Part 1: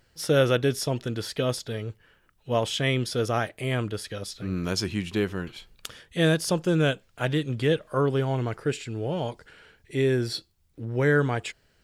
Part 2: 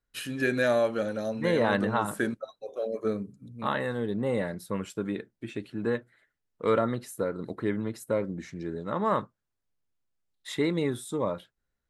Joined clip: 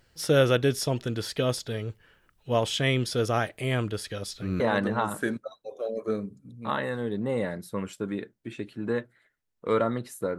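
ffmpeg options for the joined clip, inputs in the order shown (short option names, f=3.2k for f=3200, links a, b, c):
-filter_complex "[0:a]apad=whole_dur=10.38,atrim=end=10.38,atrim=end=4.602[a];[1:a]atrim=start=1.568:end=7.35[b];[a][b]acrossfade=d=0.004:c1=hsin:c2=hsin"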